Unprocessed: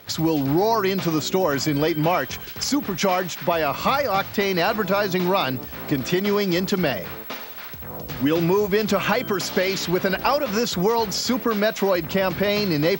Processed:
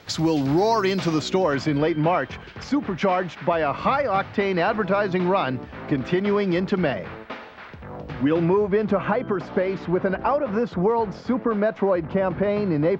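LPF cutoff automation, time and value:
0.95 s 8200 Hz
1.35 s 4400 Hz
1.9 s 2300 Hz
8.19 s 2300 Hz
9 s 1300 Hz

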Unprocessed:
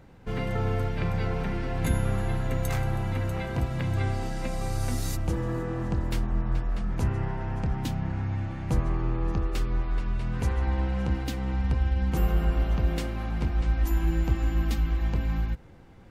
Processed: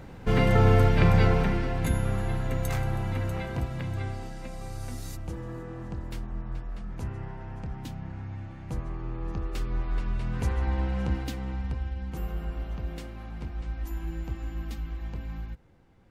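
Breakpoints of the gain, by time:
1.22 s +8 dB
1.87 s -1 dB
3.34 s -1 dB
4.42 s -8 dB
8.97 s -8 dB
9.97 s -1 dB
11.13 s -1 dB
12.02 s -9 dB

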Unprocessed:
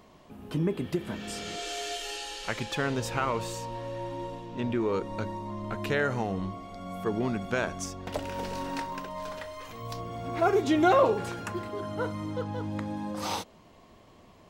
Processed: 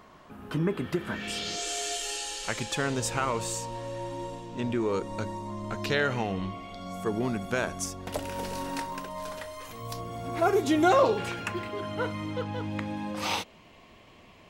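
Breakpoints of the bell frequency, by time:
bell +10 dB 0.99 oct
1.1 s 1400 Hz
1.66 s 8000 Hz
5.66 s 8000 Hz
6.16 s 2600 Hz
6.68 s 2600 Hz
7.12 s 11000 Hz
10.8 s 11000 Hz
11.25 s 2500 Hz

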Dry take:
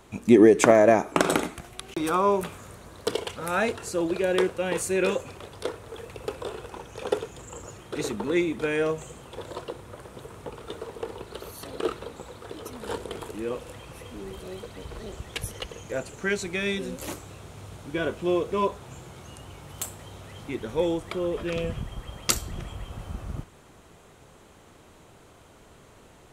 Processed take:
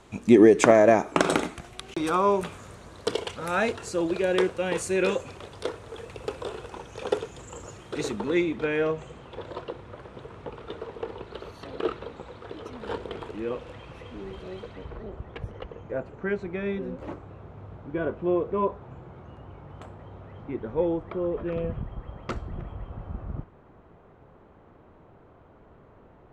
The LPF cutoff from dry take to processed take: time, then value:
8.07 s 7900 Hz
8.68 s 3400 Hz
14.66 s 3400 Hz
15.08 s 1300 Hz

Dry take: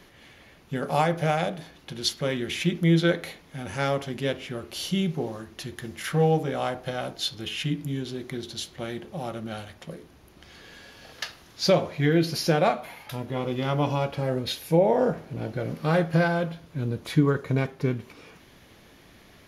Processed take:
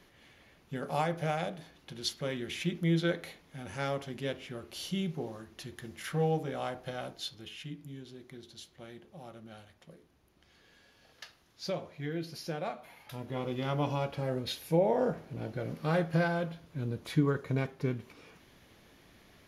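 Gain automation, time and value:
7.04 s -8 dB
7.64 s -15 dB
12.66 s -15 dB
13.33 s -6.5 dB

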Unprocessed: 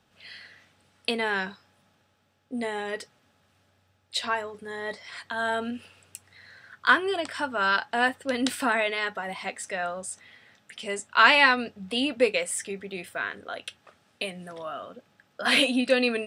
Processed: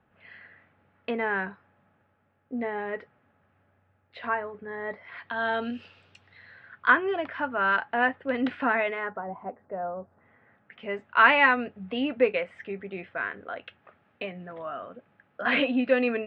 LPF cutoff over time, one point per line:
LPF 24 dB/oct
5.03 s 2100 Hz
5.76 s 5100 Hz
6.94 s 2400 Hz
8.86 s 2400 Hz
9.31 s 1000 Hz
9.92 s 1000 Hz
10.92 s 2400 Hz

